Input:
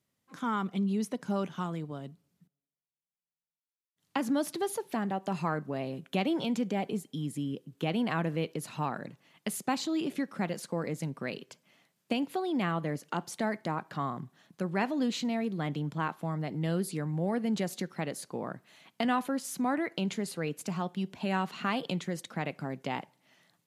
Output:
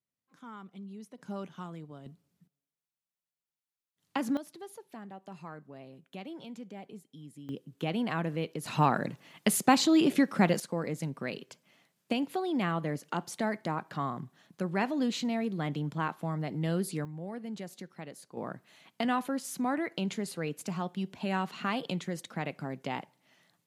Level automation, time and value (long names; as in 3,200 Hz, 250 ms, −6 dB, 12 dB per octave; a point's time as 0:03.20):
−15 dB
from 0:01.18 −7.5 dB
from 0:02.06 −1 dB
from 0:04.37 −13.5 dB
from 0:07.49 −1.5 dB
from 0:08.66 +8 dB
from 0:10.60 0 dB
from 0:17.05 −9.5 dB
from 0:18.37 −1 dB